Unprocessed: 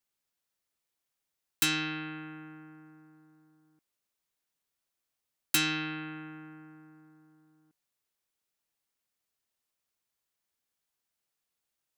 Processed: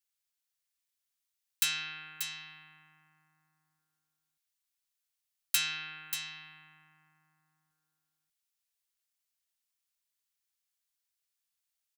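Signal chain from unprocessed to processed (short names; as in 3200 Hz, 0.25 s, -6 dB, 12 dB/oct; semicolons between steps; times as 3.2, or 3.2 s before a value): passive tone stack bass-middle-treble 10-0-10; echo 0.586 s -8 dB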